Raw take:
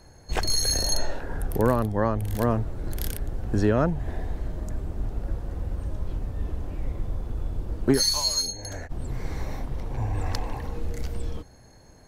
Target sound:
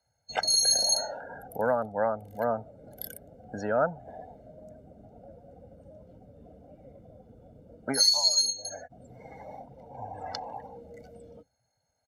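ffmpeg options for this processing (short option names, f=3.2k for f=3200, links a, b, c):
-af "afftdn=nr=23:nf=-37,highpass=360,aecho=1:1:1.4:0.85,volume=-2.5dB"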